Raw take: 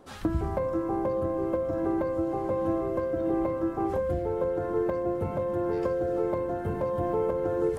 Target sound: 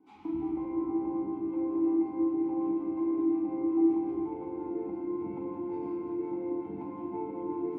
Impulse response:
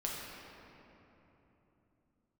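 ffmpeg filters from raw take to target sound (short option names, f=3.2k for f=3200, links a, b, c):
-filter_complex "[0:a]aeval=exprs='val(0)+0.002*sin(2*PI*1500*n/s)':c=same,acrossover=split=510[a][b];[a]aeval=exprs='val(0)*(1-0.7/2+0.7/2*cos(2*PI*5.5*n/s))':c=same[c];[b]aeval=exprs='val(0)*(1-0.7/2-0.7/2*cos(2*PI*5.5*n/s))':c=same[d];[c][d]amix=inputs=2:normalize=0,asplit=3[e][f][g];[e]bandpass=f=300:t=q:w=8,volume=0dB[h];[f]bandpass=f=870:t=q:w=8,volume=-6dB[i];[g]bandpass=f=2.24k:t=q:w=8,volume=-9dB[j];[h][i][j]amix=inputs=3:normalize=0[k];[1:a]atrim=start_sample=2205,asetrate=52920,aresample=44100[l];[k][l]afir=irnorm=-1:irlink=0,volume=7dB"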